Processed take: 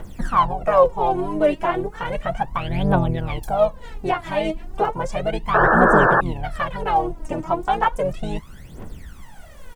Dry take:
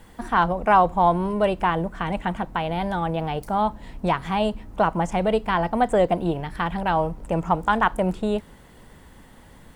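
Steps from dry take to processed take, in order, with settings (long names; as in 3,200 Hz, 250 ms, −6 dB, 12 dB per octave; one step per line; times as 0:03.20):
in parallel at +3 dB: downward compressor, threshold −29 dBFS, peak gain reduction 16 dB
on the sum: pitch-shifted copies added −5 semitones −2 dB
phase shifter 0.34 Hz, delay 3.4 ms, feedback 79%
sound drawn into the spectrogram noise, 0:05.54–0:06.21, 310–1,800 Hz −7 dBFS
level −8.5 dB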